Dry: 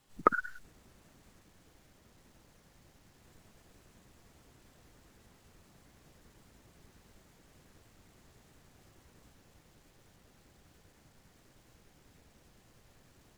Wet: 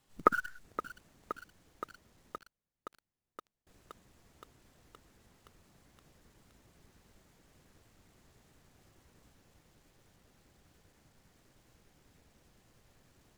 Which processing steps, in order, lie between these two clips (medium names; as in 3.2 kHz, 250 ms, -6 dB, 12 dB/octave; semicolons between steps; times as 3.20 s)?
2.38–3.67 s: gate -53 dBFS, range -28 dB; in parallel at -8 dB: word length cut 6-bit, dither none; on the sum: bit-crushed delay 520 ms, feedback 80%, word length 7-bit, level -13 dB; trim -3 dB